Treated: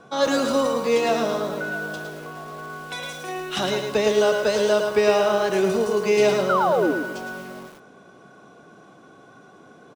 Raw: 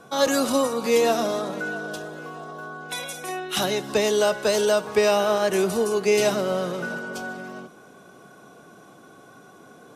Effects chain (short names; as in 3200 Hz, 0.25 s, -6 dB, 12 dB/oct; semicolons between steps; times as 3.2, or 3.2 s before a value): air absorption 74 m; echo 0.108 s -13.5 dB; painted sound fall, 6.49–6.92, 270–1500 Hz -21 dBFS; lo-fi delay 0.11 s, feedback 35%, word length 7-bit, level -5 dB